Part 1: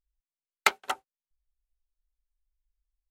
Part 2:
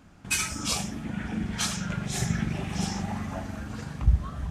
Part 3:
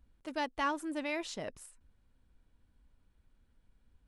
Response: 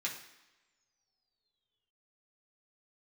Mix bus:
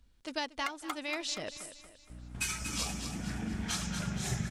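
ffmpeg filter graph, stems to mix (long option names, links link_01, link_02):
-filter_complex "[0:a]acompressor=threshold=-28dB:ratio=6,aphaser=in_gain=1:out_gain=1:delay=1.5:decay=0.69:speed=0.79:type=triangular,volume=0dB,asplit=2[link_01][link_02];[link_02]volume=-12dB[link_03];[1:a]aeval=exprs='val(0)+0.01*(sin(2*PI*60*n/s)+sin(2*PI*2*60*n/s)/2+sin(2*PI*3*60*n/s)/3+sin(2*PI*4*60*n/s)/4+sin(2*PI*5*60*n/s)/5)':channel_layout=same,adelay=2100,volume=-6dB,asplit=2[link_04][link_05];[link_05]volume=-7.5dB[link_06];[2:a]equalizer=frequency=5000:width_type=o:width=1.9:gain=11.5,volume=0dB,asplit=2[link_07][link_08];[link_08]volume=-14.5dB[link_09];[link_03][link_06][link_09]amix=inputs=3:normalize=0,aecho=0:1:235|470|705|940|1175|1410:1|0.44|0.194|0.0852|0.0375|0.0165[link_10];[link_01][link_04][link_07][link_10]amix=inputs=4:normalize=0,alimiter=limit=-21.5dB:level=0:latency=1:release=479"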